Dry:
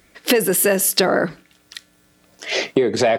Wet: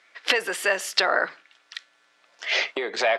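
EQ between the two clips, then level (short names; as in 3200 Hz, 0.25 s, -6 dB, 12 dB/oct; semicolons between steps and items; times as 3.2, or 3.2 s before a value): HPF 1000 Hz 12 dB/oct; air absorption 88 m; high shelf 6200 Hz -9 dB; +3.0 dB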